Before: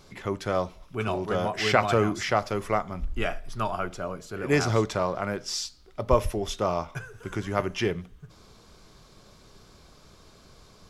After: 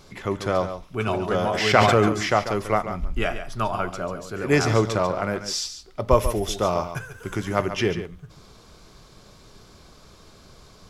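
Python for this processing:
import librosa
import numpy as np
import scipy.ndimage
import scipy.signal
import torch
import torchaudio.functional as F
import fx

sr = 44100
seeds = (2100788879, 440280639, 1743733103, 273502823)

y = fx.high_shelf(x, sr, hz=11000.0, db=11.0, at=(6.11, 7.56))
y = y + 10.0 ** (-10.5 / 20.0) * np.pad(y, (int(141 * sr / 1000.0), 0))[:len(y)]
y = fx.sustainer(y, sr, db_per_s=30.0, at=(1.38, 2.09))
y = y * librosa.db_to_amplitude(3.5)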